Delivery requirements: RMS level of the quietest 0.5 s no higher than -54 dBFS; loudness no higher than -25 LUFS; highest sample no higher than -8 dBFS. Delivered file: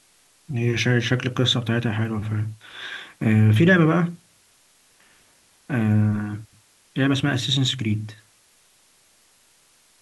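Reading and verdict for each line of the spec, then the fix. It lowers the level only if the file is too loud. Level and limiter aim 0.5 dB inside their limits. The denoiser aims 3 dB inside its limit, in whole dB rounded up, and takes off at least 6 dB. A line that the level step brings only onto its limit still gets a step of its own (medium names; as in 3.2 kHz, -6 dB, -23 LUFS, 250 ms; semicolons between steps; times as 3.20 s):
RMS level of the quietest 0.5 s -59 dBFS: pass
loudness -21.5 LUFS: fail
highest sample -5.5 dBFS: fail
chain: trim -4 dB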